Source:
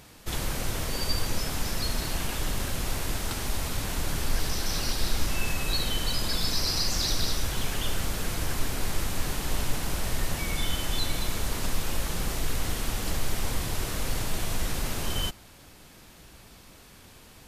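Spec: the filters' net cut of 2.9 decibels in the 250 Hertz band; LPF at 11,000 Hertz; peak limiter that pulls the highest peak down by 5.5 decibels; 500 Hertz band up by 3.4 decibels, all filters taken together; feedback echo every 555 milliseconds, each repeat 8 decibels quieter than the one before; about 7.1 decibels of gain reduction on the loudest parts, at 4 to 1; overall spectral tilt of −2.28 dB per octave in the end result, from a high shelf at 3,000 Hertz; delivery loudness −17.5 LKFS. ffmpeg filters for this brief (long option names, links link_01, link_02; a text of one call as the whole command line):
ffmpeg -i in.wav -af "lowpass=11000,equalizer=frequency=250:width_type=o:gain=-6,equalizer=frequency=500:width_type=o:gain=5.5,highshelf=frequency=3000:gain=9,acompressor=threshold=-27dB:ratio=4,alimiter=limit=-21.5dB:level=0:latency=1,aecho=1:1:555|1110|1665|2220|2775:0.398|0.159|0.0637|0.0255|0.0102,volume=14dB" out.wav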